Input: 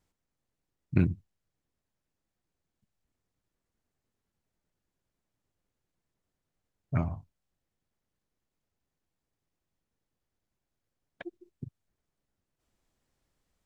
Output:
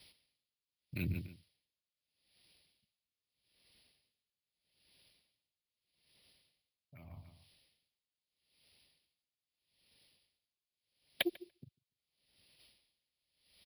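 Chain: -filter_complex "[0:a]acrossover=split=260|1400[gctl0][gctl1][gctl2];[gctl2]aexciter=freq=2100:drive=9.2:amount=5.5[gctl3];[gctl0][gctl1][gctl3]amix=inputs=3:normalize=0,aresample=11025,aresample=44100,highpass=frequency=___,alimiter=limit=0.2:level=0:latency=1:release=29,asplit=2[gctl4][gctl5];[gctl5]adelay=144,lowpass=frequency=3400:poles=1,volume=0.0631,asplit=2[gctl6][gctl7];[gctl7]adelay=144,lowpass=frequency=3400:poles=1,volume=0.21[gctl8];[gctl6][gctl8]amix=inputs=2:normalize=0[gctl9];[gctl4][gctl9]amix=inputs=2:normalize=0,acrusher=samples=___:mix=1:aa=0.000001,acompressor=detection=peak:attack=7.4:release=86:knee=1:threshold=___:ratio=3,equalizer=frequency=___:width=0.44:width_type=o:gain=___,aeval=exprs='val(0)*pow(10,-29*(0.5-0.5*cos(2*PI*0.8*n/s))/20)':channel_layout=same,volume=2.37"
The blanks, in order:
46, 3, 0.0126, 550, 5.5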